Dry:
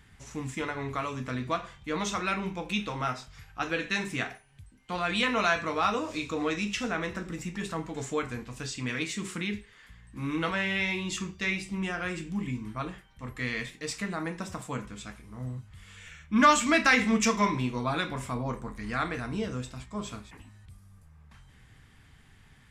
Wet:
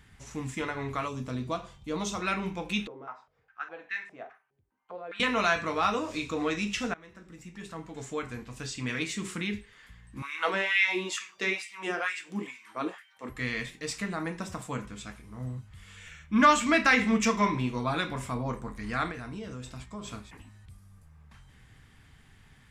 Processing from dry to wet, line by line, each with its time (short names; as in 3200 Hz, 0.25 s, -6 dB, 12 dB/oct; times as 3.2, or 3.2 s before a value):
1.08–2.22 bell 1800 Hz -11 dB 1.1 oct
2.87–5.2 stepped band-pass 4.9 Hz 400–1900 Hz
6.94–8.91 fade in, from -23.5 dB
10.22–13.3 LFO high-pass sine 2.2 Hz 290–2200 Hz
16.36–17.67 tone controls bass 0 dB, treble -4 dB
19.11–20.08 compressor 4:1, threshold -36 dBFS